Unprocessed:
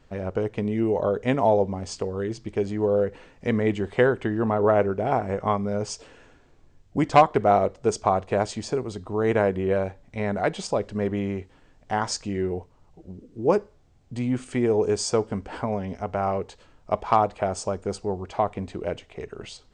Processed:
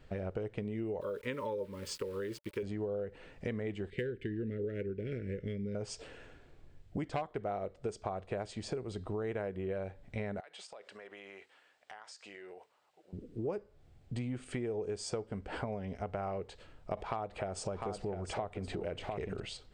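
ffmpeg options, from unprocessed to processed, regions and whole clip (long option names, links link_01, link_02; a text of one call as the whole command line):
ffmpeg -i in.wav -filter_complex "[0:a]asettb=1/sr,asplit=3[link_01][link_02][link_03];[link_01]atrim=end=1.014[link_04];[link_02]atrim=start=1.01:end=2.63,asetpts=PTS-STARTPTS,afade=type=in:duration=0.004:curve=qsin,afade=type=out:start_time=1.616:duration=0.004:curve=qsin,lowshelf=frequency=240:gain=-12,aeval=exprs='val(0)*gte(abs(val(0)),0.00501)':channel_layout=same,asuperstop=centerf=720:order=20:qfactor=2.7[link_05];[link_03]atrim=start=2.626[link_06];[link_04][link_05]acrossfade=duration=0.004:curve1=hsin:curve2=qsin[link_07];[link_07][link_06]acrossfade=duration=0.004:curve1=qsin:curve2=hsin,asettb=1/sr,asplit=3[link_08][link_09][link_10];[link_08]atrim=end=3.904[link_11];[link_09]atrim=start=3.9:end=5.75,asetpts=PTS-STARTPTS,afade=type=in:duration=0.004:curve=qsin,afade=type=out:start_time=1.846:duration=0.004:curve=qsin,asuperstop=centerf=900:order=8:qfactor=0.72,adynamicsmooth=sensitivity=8:basefreq=4700[link_12];[link_10]atrim=start=5.746[link_13];[link_11][link_12]acrossfade=duration=0.004:curve1=hsin:curve2=qsin[link_14];[link_14][link_13]acrossfade=duration=0.004:curve1=qsin:curve2=hsin,asettb=1/sr,asplit=3[link_15][link_16][link_17];[link_15]atrim=end=10.404[link_18];[link_16]atrim=start=10.4:end=13.13,asetpts=PTS-STARTPTS,afade=type=in:duration=0.004:curve=qsin,afade=type=out:start_time=2.726:duration=0.004:curve=qsin,highpass=850,acompressor=threshold=-44dB:ratio=8:attack=3.2:release=140:knee=1:detection=peak[link_19];[link_17]atrim=start=13.126[link_20];[link_18][link_19]acrossfade=duration=0.004:curve1=hsin:curve2=qsin[link_21];[link_21][link_20]acrossfade=duration=0.004:curve1=qsin:curve2=hsin,asettb=1/sr,asplit=3[link_22][link_23][link_24];[link_22]atrim=end=16.974[link_25];[link_23]atrim=start=16.97:end=19.4,asetpts=PTS-STARTPTS,afade=type=in:duration=0.004:curve=qsin,afade=type=out:start_time=2.426:duration=0.004:curve=qsin,aecho=1:1:701:0.266,atrim=end_sample=107163,acompressor=mode=upward:threshold=-24dB:ratio=2.5:attack=3.2:release=140:knee=2.83:detection=peak[link_26];[link_24]atrim=start=19.396[link_27];[link_25][link_26]acrossfade=duration=0.004:curve1=hsin:curve2=qsin[link_28];[link_28][link_27]acrossfade=duration=0.004:curve1=qsin:curve2=hsin,equalizer=frequency=250:width_type=o:width=0.67:gain=-4,equalizer=frequency=1000:width_type=o:width=0.67:gain=-6,equalizer=frequency=6300:width_type=o:width=0.67:gain=-8,acompressor=threshold=-35dB:ratio=6" out.wav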